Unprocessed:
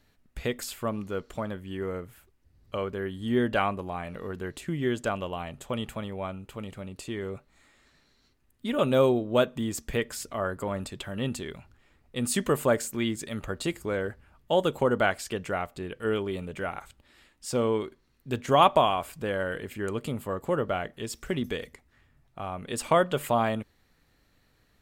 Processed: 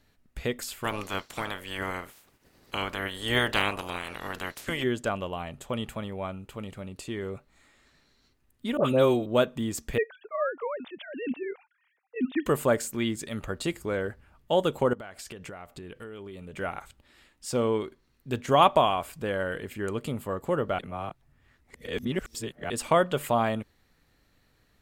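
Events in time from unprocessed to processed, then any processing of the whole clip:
0.83–4.82 s: spectral peaks clipped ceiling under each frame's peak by 26 dB
8.77–9.26 s: phase dispersion highs, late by 71 ms, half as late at 1.2 kHz
9.98–12.46 s: formants replaced by sine waves
14.93–16.58 s: compression 16:1, threshold -37 dBFS
20.79–22.70 s: reverse

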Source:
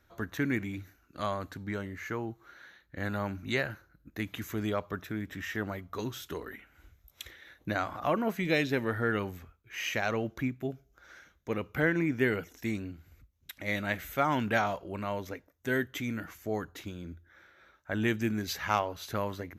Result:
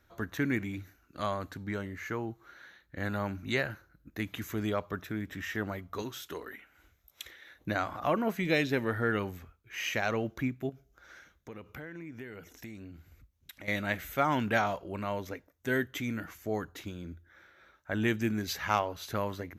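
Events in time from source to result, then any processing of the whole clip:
6.02–7.55 s: bass shelf 210 Hz -10 dB
10.69–13.68 s: compression 5:1, threshold -42 dBFS

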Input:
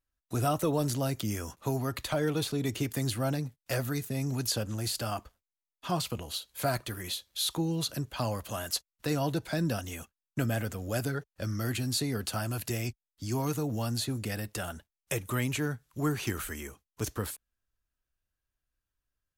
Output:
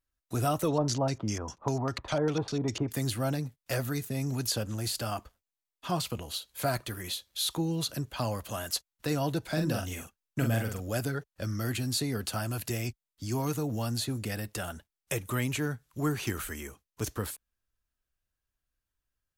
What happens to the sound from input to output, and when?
0.68–2.91 s: LFO low-pass square 5 Hz 940–5800 Hz
9.42–10.80 s: doubling 44 ms -5 dB

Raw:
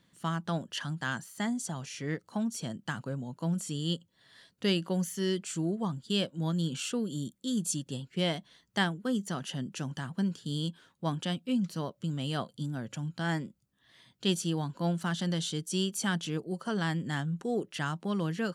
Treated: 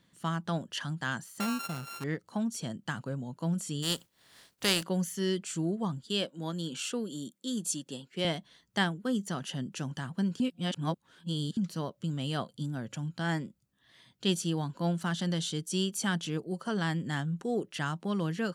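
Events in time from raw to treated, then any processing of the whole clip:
1.40–2.04 s: sorted samples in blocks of 32 samples
3.82–4.82 s: spectral contrast reduction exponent 0.48
6.06–8.25 s: high-pass 240 Hz
10.40–11.57 s: reverse

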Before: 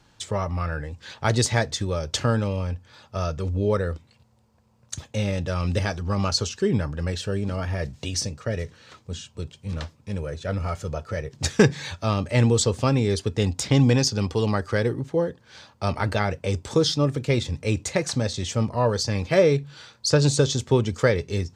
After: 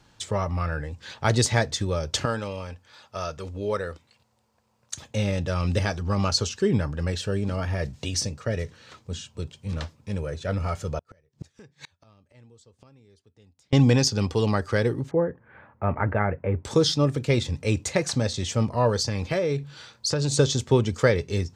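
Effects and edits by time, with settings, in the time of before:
2.25–5.02 s: bass shelf 320 Hz -12 dB
10.98–13.73 s: inverted gate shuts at -24 dBFS, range -34 dB
15.11–16.65 s: steep low-pass 2.1 kHz
19.06–20.32 s: compression, threshold -21 dBFS

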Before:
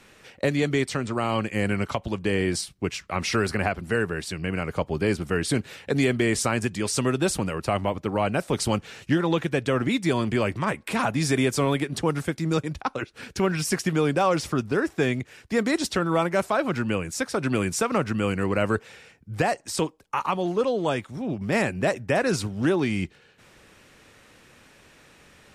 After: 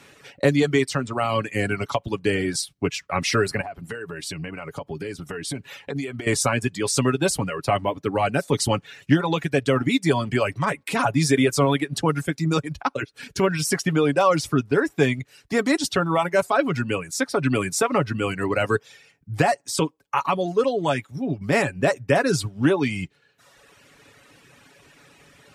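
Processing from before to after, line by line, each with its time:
3.61–6.27 s: compression, threshold -30 dBFS
whole clip: high-pass 53 Hz; reverb removal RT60 1.2 s; comb 7.1 ms, depth 46%; trim +3 dB

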